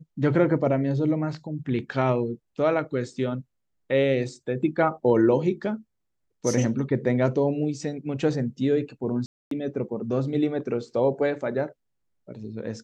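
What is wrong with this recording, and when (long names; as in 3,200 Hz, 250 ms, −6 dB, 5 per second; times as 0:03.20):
0:09.26–0:09.51: drop-out 253 ms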